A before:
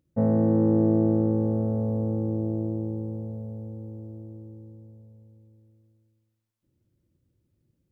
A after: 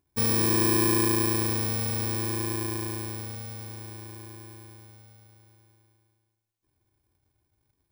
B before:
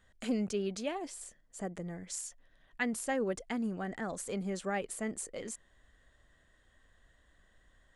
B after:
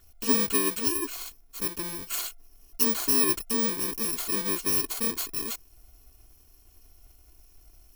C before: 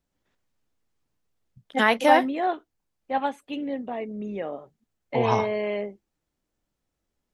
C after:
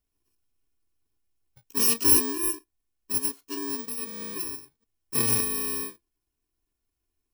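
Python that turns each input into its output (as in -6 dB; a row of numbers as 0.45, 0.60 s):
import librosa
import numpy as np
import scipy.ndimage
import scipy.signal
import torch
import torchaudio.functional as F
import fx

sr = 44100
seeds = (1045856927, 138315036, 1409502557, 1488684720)

y = fx.bit_reversed(x, sr, seeds[0], block=64)
y = y + 0.68 * np.pad(y, (int(2.8 * sr / 1000.0), 0))[:len(y)]
y = y * 10.0 ** (-30 / 20.0) / np.sqrt(np.mean(np.square(y)))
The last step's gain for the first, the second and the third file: -3.0, +7.5, -3.5 dB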